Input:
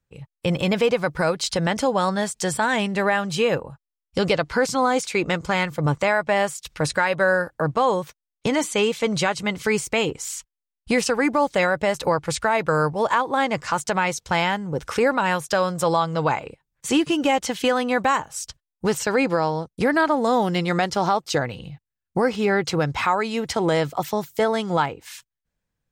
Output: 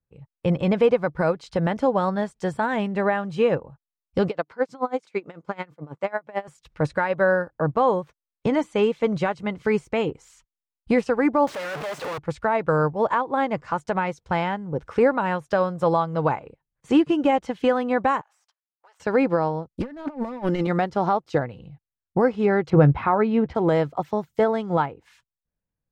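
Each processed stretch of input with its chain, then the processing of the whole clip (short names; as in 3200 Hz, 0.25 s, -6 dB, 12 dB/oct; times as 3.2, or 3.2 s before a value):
4.29–6.48 HPF 220 Hz + dB-linear tremolo 9.1 Hz, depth 20 dB
11.47–12.18 infinite clipping + HPF 900 Hz 6 dB/oct + fast leveller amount 50%
18.21–19 half-wave gain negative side -7 dB + inverse Chebyshev high-pass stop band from 180 Hz, stop band 70 dB + compressor 10:1, threshold -42 dBFS
19.75–20.67 overloaded stage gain 18.5 dB + comb 3.4 ms, depth 56% + negative-ratio compressor -25 dBFS, ratio -0.5
22.7–23.55 LPF 3300 Hz + low shelf 410 Hz +6.5 dB + doubler 14 ms -12.5 dB
whole clip: LPF 3300 Hz 6 dB/oct; high shelf 2000 Hz -11.5 dB; upward expander 1.5:1, over -34 dBFS; gain +4 dB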